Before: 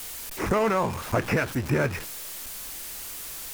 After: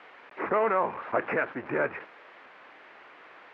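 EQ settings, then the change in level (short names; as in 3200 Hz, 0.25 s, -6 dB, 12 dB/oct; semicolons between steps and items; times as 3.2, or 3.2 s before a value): HPF 400 Hz 12 dB/oct; LPF 2100 Hz 24 dB/oct; 0.0 dB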